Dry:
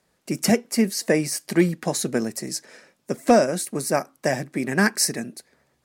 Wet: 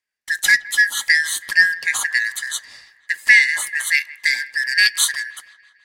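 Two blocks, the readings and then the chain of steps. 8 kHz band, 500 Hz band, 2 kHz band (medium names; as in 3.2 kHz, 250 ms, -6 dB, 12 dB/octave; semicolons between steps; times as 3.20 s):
+3.5 dB, under -30 dB, +16.0 dB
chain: four frequency bands reordered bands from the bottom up 3142; gate with hold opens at -42 dBFS; on a send: feedback echo behind a low-pass 163 ms, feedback 59%, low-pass 2.7 kHz, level -20 dB; on the sum: trim +4 dB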